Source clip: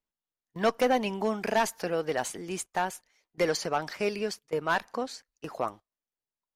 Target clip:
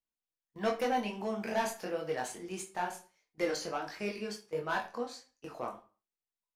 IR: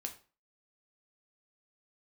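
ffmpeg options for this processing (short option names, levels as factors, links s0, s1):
-filter_complex "[0:a]flanger=delay=19.5:depth=5.2:speed=1.5[s0];[1:a]atrim=start_sample=2205[s1];[s0][s1]afir=irnorm=-1:irlink=0,volume=0.841"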